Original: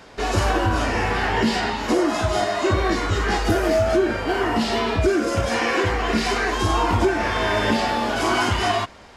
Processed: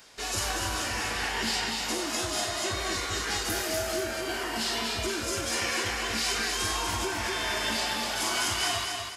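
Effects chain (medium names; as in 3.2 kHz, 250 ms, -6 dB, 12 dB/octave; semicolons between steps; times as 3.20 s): pre-emphasis filter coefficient 0.9; feedback delay 244 ms, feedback 42%, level -4.5 dB; trim +3.5 dB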